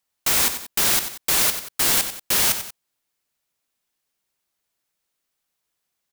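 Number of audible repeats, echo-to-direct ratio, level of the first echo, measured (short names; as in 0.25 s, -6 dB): 2, -9.0 dB, -10.0 dB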